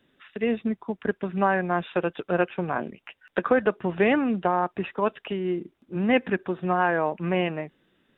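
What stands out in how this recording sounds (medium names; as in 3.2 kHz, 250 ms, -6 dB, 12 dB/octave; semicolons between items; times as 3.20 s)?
noise floor -73 dBFS; spectral tilt -5.0 dB/octave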